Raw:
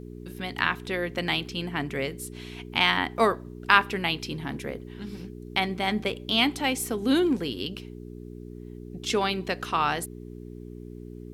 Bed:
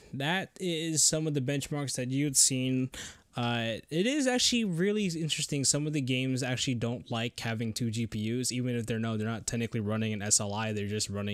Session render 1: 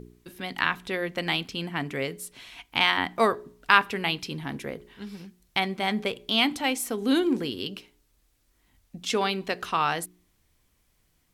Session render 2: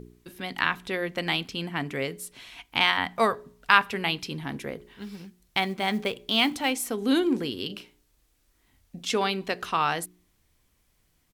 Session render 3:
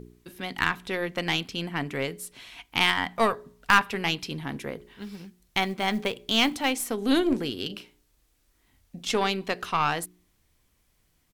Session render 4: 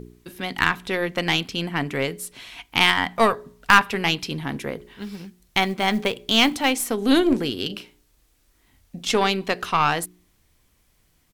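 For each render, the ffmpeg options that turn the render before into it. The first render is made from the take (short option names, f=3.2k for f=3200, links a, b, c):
-af "bandreject=f=60:t=h:w=4,bandreject=f=120:t=h:w=4,bandreject=f=180:t=h:w=4,bandreject=f=240:t=h:w=4,bandreject=f=300:t=h:w=4,bandreject=f=360:t=h:w=4,bandreject=f=420:t=h:w=4"
-filter_complex "[0:a]asettb=1/sr,asplit=3[a][b][c];[a]atrim=end=2.914[d];[b]atrim=start=2.91:end=3.94,asetpts=PTS-STARTPTS,afade=t=in:d=0.004:c=qsin,afade=t=out:st=1.026:d=0.004:c=qsin,equalizer=f=330:w=4.9:g=-15[e];[c]atrim=start=3.936[f];[d][e]acrossfade=d=0.004:c1=hsin:c2=qsin[g];[g][f]acrossfade=d=0.004:c1=qsin:c2=hsin,asplit=3[h][i][j];[h]afade=t=out:st=4.87:d=0.02[k];[i]acrusher=bits=7:mode=log:mix=0:aa=0.000001,afade=t=in:st=4.87:d=0.02,afade=t=out:st=6.7:d=0.02[l];[j]afade=t=in:st=6.7:d=0.02[m];[k][l][m]amix=inputs=3:normalize=0,asplit=3[n][o][p];[n]afade=t=out:st=7.69:d=0.02[q];[o]asplit=2[r][s];[s]adelay=34,volume=-7dB[t];[r][t]amix=inputs=2:normalize=0,afade=t=in:st=7.69:d=0.02,afade=t=out:st=9.01:d=0.02[u];[p]afade=t=in:st=9.01:d=0.02[v];[q][u][v]amix=inputs=3:normalize=0"
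-af "aeval=exprs='0.794*(cos(1*acos(clip(val(0)/0.794,-1,1)))-cos(1*PI/2))+0.0447*(cos(8*acos(clip(val(0)/0.794,-1,1)))-cos(8*PI/2))':c=same,asoftclip=type=hard:threshold=-8dB"
-af "volume=5dB"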